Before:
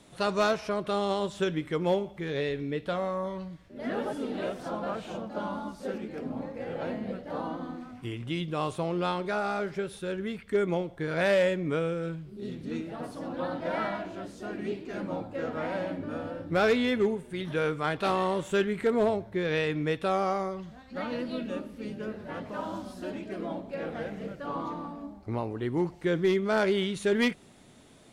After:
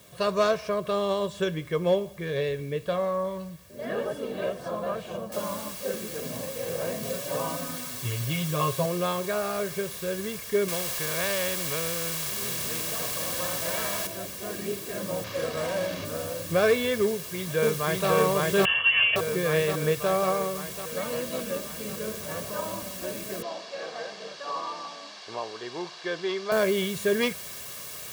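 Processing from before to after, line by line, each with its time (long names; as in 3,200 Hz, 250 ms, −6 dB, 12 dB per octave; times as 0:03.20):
0:05.32: noise floor change −58 dB −41 dB
0:07.02–0:08.86: comb filter 7.3 ms, depth 86%
0:10.68–0:14.07: every bin compressed towards the loudest bin 2 to 1
0:15.24–0:16.05: sample-rate reduction 9,100 Hz
0:17.07–0:18.10: delay throw 550 ms, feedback 70%, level 0 dB
0:18.65–0:19.16: voice inversion scrambler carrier 3,200 Hz
0:23.42–0:26.52: loudspeaker in its box 440–5,300 Hz, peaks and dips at 530 Hz −6 dB, 800 Hz +6 dB, 2,200 Hz −3 dB, 4,500 Hz +5 dB
whole clip: high-pass filter 82 Hz; low-shelf EQ 230 Hz +3.5 dB; comb filter 1.8 ms, depth 63%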